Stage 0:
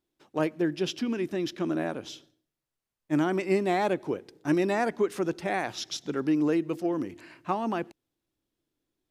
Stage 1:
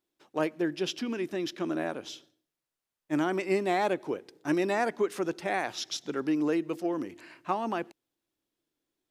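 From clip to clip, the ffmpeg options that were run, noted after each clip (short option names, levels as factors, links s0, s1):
-af "lowshelf=f=170:g=-11.5"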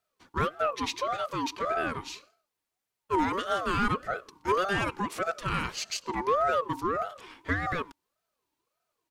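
-filter_complex "[0:a]aecho=1:1:3.6:0.48,asplit=2[s0][s1];[s1]asoftclip=type=tanh:threshold=0.0316,volume=0.668[s2];[s0][s2]amix=inputs=2:normalize=0,aeval=exprs='val(0)*sin(2*PI*800*n/s+800*0.25/1.7*sin(2*PI*1.7*n/s))':c=same"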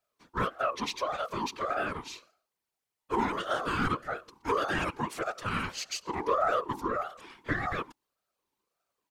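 -af "afftfilt=real='hypot(re,im)*cos(2*PI*random(0))':imag='hypot(re,im)*sin(2*PI*random(1))':win_size=512:overlap=0.75,volume=1.58"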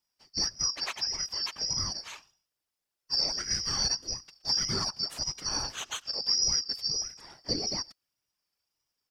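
-af "afftfilt=real='real(if(lt(b,272),68*(eq(floor(b/68),0)*1+eq(floor(b/68),1)*2+eq(floor(b/68),2)*3+eq(floor(b/68),3)*0)+mod(b,68),b),0)':imag='imag(if(lt(b,272),68*(eq(floor(b/68),0)*1+eq(floor(b/68),1)*2+eq(floor(b/68),2)*3+eq(floor(b/68),3)*0)+mod(b,68),b),0)':win_size=2048:overlap=0.75"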